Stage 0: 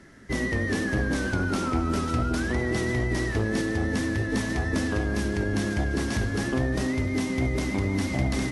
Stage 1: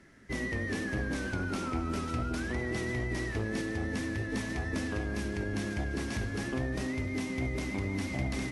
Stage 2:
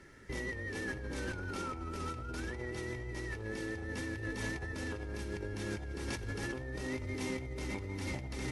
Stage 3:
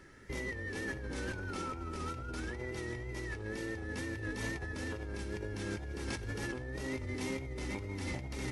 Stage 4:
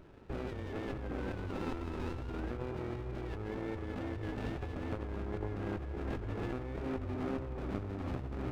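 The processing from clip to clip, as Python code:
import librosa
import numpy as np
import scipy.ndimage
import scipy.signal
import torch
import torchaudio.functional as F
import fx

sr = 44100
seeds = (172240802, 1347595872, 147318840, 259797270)

y1 = fx.peak_eq(x, sr, hz=2400.0, db=4.5, octaves=0.48)
y1 = y1 * librosa.db_to_amplitude(-7.5)
y2 = y1 + 0.46 * np.pad(y1, (int(2.2 * sr / 1000.0), 0))[:len(y1)]
y2 = fx.over_compress(y2, sr, threshold_db=-37.0, ratio=-1.0)
y2 = y2 * librosa.db_to_amplitude(-2.5)
y3 = fx.wow_flutter(y2, sr, seeds[0], rate_hz=2.1, depth_cents=44.0)
y4 = fx.lowpass_res(y3, sr, hz=1100.0, q=4.9)
y4 = y4 + 10.0 ** (-16.5 / 20.0) * np.pad(y4, (int(119 * sr / 1000.0), 0))[:len(y4)]
y4 = fx.running_max(y4, sr, window=33)
y4 = y4 * librosa.db_to_amplitude(1.0)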